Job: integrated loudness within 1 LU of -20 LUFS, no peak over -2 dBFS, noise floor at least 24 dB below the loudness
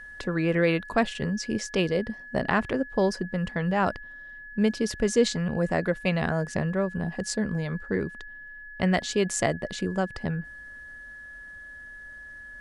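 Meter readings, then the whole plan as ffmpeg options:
steady tone 1700 Hz; tone level -41 dBFS; loudness -27.5 LUFS; peak -8.5 dBFS; loudness target -20.0 LUFS
-> -af "bandreject=f=1.7k:w=30"
-af "volume=7.5dB,alimiter=limit=-2dB:level=0:latency=1"

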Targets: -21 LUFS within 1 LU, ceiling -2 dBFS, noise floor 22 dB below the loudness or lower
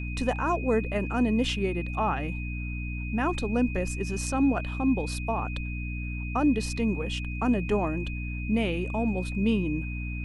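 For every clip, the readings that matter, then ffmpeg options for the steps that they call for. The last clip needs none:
hum 60 Hz; harmonics up to 300 Hz; hum level -31 dBFS; steady tone 2500 Hz; tone level -39 dBFS; loudness -28.5 LUFS; peak -13.5 dBFS; loudness target -21.0 LUFS
-> -af "bandreject=f=60:t=h:w=4,bandreject=f=120:t=h:w=4,bandreject=f=180:t=h:w=4,bandreject=f=240:t=h:w=4,bandreject=f=300:t=h:w=4"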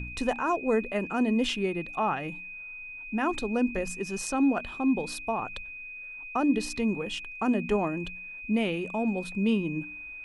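hum none; steady tone 2500 Hz; tone level -39 dBFS
-> -af "bandreject=f=2.5k:w=30"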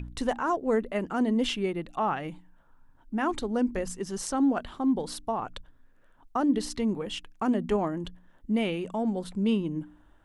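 steady tone none; loudness -29.0 LUFS; peak -13.0 dBFS; loudness target -21.0 LUFS
-> -af "volume=8dB"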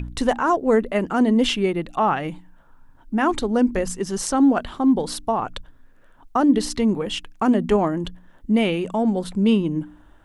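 loudness -21.0 LUFS; peak -5.0 dBFS; noise floor -51 dBFS

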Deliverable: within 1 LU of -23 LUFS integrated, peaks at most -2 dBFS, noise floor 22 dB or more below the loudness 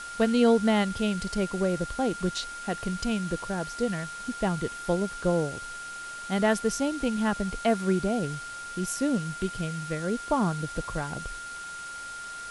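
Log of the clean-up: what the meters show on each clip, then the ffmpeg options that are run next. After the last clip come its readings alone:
steady tone 1400 Hz; tone level -37 dBFS; noise floor -39 dBFS; noise floor target -51 dBFS; loudness -29.0 LUFS; peak -10.5 dBFS; loudness target -23.0 LUFS
-> -af "bandreject=f=1.4k:w=30"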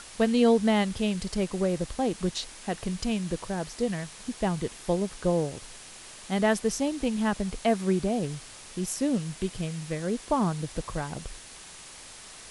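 steady tone none; noise floor -46 dBFS; noise floor target -51 dBFS
-> -af "afftdn=nr=6:nf=-46"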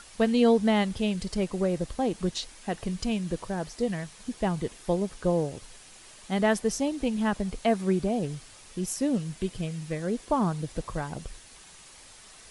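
noise floor -51 dBFS; loudness -28.5 LUFS; peak -10.5 dBFS; loudness target -23.0 LUFS
-> -af "volume=5.5dB"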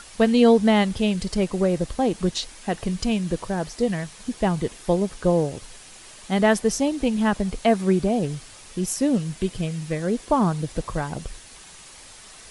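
loudness -23.0 LUFS; peak -5.0 dBFS; noise floor -45 dBFS

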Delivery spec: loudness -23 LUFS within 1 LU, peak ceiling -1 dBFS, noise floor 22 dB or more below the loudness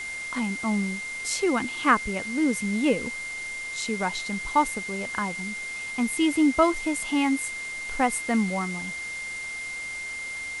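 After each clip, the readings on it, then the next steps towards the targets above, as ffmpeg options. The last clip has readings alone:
steady tone 2100 Hz; tone level -32 dBFS; noise floor -35 dBFS; noise floor target -49 dBFS; loudness -26.5 LUFS; peak -7.5 dBFS; loudness target -23.0 LUFS
-> -af "bandreject=f=2.1k:w=30"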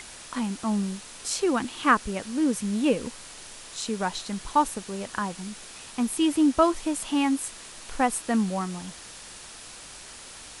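steady tone none; noise floor -44 dBFS; noise floor target -49 dBFS
-> -af "afftdn=nr=6:nf=-44"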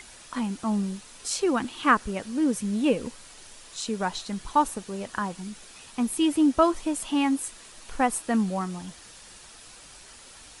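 noise floor -49 dBFS; loudness -26.5 LUFS; peak -8.0 dBFS; loudness target -23.0 LUFS
-> -af "volume=3.5dB"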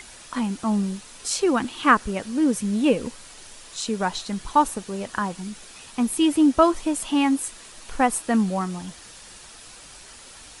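loudness -23.0 LUFS; peak -4.5 dBFS; noise floor -45 dBFS

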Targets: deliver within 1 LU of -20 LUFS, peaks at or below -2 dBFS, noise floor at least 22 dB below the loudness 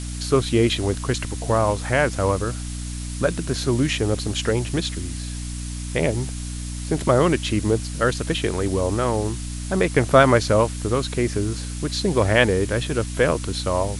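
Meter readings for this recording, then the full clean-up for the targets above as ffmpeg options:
hum 60 Hz; harmonics up to 300 Hz; hum level -28 dBFS; noise floor -30 dBFS; noise floor target -44 dBFS; loudness -22.0 LUFS; peak -2.5 dBFS; loudness target -20.0 LUFS
-> -af "bandreject=f=60:t=h:w=6,bandreject=f=120:t=h:w=6,bandreject=f=180:t=h:w=6,bandreject=f=240:t=h:w=6,bandreject=f=300:t=h:w=6"
-af "afftdn=nr=14:nf=-30"
-af "volume=2dB,alimiter=limit=-2dB:level=0:latency=1"

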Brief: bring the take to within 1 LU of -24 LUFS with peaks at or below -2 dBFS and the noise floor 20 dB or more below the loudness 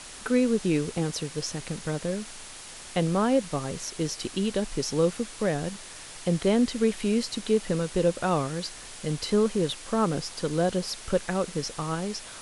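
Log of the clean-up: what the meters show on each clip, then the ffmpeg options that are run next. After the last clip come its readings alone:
noise floor -43 dBFS; noise floor target -48 dBFS; loudness -27.5 LUFS; peak -11.0 dBFS; loudness target -24.0 LUFS
-> -af "afftdn=nr=6:nf=-43"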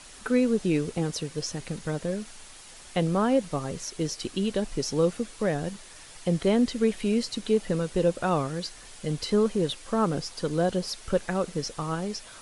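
noise floor -47 dBFS; noise floor target -48 dBFS
-> -af "afftdn=nr=6:nf=-47"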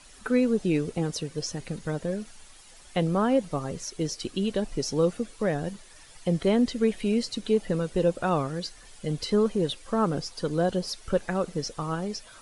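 noise floor -51 dBFS; loudness -28.0 LUFS; peak -11.5 dBFS; loudness target -24.0 LUFS
-> -af "volume=4dB"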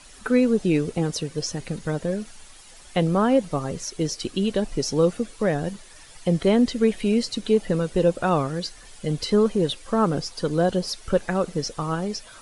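loudness -24.0 LUFS; peak -7.5 dBFS; noise floor -47 dBFS

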